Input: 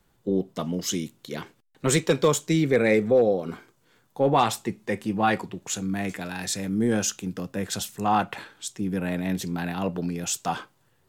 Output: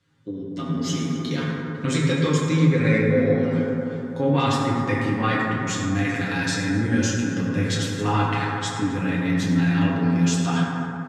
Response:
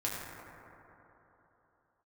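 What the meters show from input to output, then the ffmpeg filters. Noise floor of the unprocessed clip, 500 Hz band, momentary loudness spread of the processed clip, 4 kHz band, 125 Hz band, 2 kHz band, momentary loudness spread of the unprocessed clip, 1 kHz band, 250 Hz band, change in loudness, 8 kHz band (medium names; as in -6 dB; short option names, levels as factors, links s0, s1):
-66 dBFS, -1.0 dB, 7 LU, +2.5 dB, +9.5 dB, +5.5 dB, 13 LU, 0.0 dB, +5.5 dB, +3.5 dB, -2.5 dB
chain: -filter_complex "[0:a]highpass=90,equalizer=f=710:t=o:w=1.1:g=-12.5,aecho=1:1:7.4:0.65,acompressor=threshold=0.02:ratio=2.5,lowpass=5300,bandreject=f=380:w=12,asplit=2[s0][s1];[s1]adelay=254,lowpass=f=4100:p=1,volume=0.2,asplit=2[s2][s3];[s3]adelay=254,lowpass=f=4100:p=1,volume=0.33,asplit=2[s4][s5];[s5]adelay=254,lowpass=f=4100:p=1,volume=0.33[s6];[s0][s2][s4][s6]amix=inputs=4:normalize=0[s7];[1:a]atrim=start_sample=2205[s8];[s7][s8]afir=irnorm=-1:irlink=0,dynaudnorm=f=130:g=13:m=2.51"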